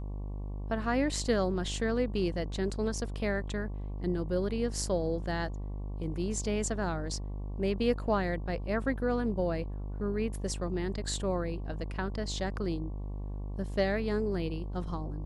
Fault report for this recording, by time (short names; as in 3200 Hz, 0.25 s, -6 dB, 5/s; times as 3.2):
buzz 50 Hz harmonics 23 -37 dBFS